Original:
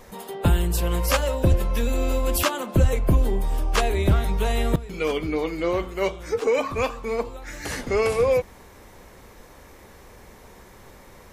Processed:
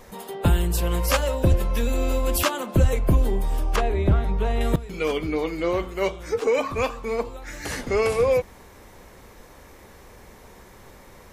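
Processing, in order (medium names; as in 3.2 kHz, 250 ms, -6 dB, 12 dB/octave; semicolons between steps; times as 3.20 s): 3.76–4.61 s: low-pass 1.5 kHz 6 dB/octave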